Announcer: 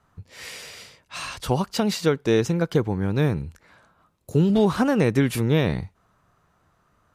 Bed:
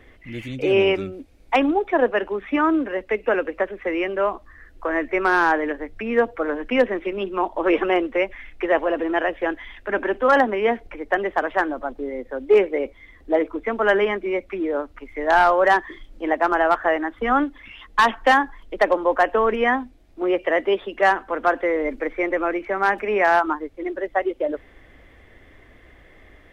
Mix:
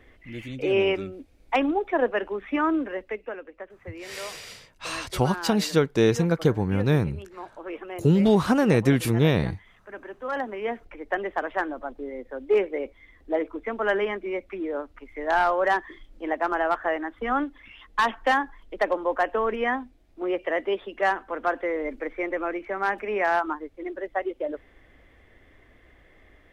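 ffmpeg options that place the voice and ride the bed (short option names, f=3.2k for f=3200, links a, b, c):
-filter_complex "[0:a]adelay=3700,volume=0dB[a];[1:a]volume=6.5dB,afade=t=out:st=2.85:d=0.51:silence=0.237137,afade=t=in:st=10.15:d=0.93:silence=0.281838[b];[a][b]amix=inputs=2:normalize=0"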